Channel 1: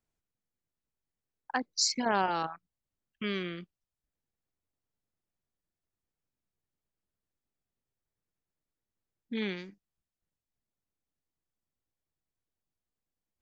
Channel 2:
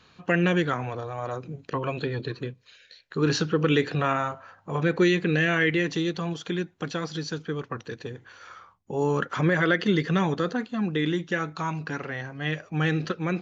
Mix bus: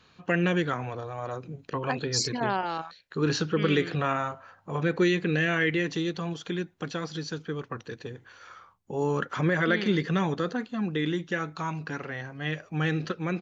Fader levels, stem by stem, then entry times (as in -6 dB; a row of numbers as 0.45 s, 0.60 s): 0.0 dB, -2.5 dB; 0.35 s, 0.00 s